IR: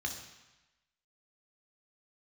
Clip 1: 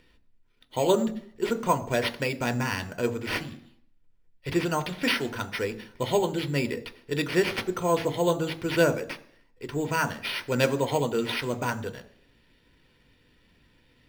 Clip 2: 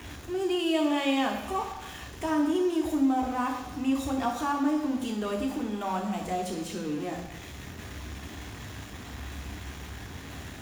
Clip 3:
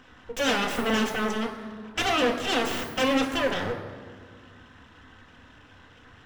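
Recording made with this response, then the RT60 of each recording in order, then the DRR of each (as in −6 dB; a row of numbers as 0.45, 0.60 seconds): 2; 0.60, 1.0, 1.8 seconds; 9.5, 2.0, 2.5 decibels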